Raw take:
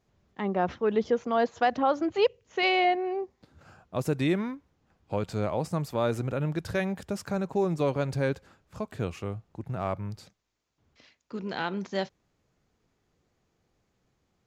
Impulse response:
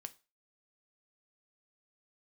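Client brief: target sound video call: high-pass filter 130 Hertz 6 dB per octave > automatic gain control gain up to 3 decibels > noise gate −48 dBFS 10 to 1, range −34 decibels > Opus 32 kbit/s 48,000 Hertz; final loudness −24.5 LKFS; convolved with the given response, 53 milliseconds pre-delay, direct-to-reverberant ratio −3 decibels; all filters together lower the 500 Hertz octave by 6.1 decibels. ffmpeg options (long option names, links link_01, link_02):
-filter_complex "[0:a]equalizer=frequency=500:width_type=o:gain=-7.5,asplit=2[link_01][link_02];[1:a]atrim=start_sample=2205,adelay=53[link_03];[link_02][link_03]afir=irnorm=-1:irlink=0,volume=8dB[link_04];[link_01][link_04]amix=inputs=2:normalize=0,highpass=frequency=130:poles=1,dynaudnorm=maxgain=3dB,agate=range=-34dB:threshold=-48dB:ratio=10,volume=3.5dB" -ar 48000 -c:a libopus -b:a 32k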